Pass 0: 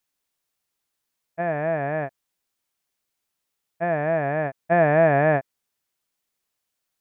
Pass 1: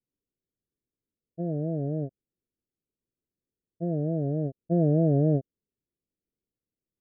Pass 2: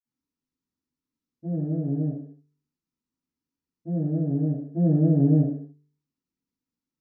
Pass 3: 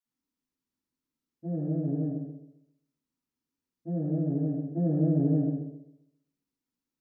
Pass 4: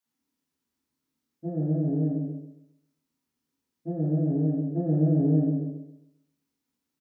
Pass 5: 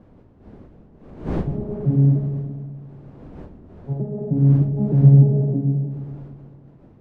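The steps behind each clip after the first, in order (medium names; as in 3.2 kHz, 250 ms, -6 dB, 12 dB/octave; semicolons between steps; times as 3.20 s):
inverse Chebyshev low-pass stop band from 890 Hz, stop band 40 dB; trim +2.5 dB
high-order bell 540 Hz -13 dB 1.1 oct; de-hum 49.13 Hz, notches 9; reverberation, pre-delay 46 ms; trim -3.5 dB
compression 1.5:1, threshold -26 dBFS, peak gain reduction 4.5 dB; peaking EQ 100 Hz -4.5 dB 2.6 oct; feedback echo behind a low-pass 133 ms, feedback 32%, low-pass 740 Hz, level -6 dB
high-pass 61 Hz; in parallel at +1.5 dB: compression, threshold -34 dBFS, peak gain reduction 13 dB; on the sum: doubling 26 ms -3.5 dB; trim -2 dB
vocoder on a broken chord bare fifth, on C#3, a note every 307 ms; wind noise 310 Hz -45 dBFS; on a send: delay with an opening low-pass 107 ms, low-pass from 200 Hz, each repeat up 1 oct, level -6 dB; on the sum: trim +7.5 dB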